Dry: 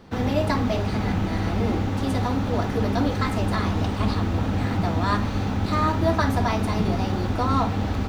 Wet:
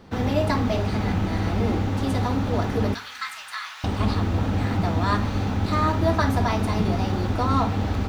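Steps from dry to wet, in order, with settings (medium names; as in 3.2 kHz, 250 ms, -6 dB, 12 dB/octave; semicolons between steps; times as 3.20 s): 2.94–3.84 s: high-pass 1.3 kHz 24 dB/octave; two-slope reverb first 0.47 s, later 2.1 s, from -19 dB, DRR 19 dB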